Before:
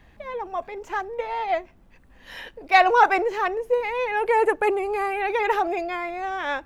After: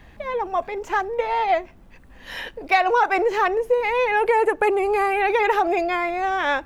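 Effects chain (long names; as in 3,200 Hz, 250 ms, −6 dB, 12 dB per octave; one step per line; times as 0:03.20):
downward compressor 6 to 1, threshold −21 dBFS, peak gain reduction 10.5 dB
level +6 dB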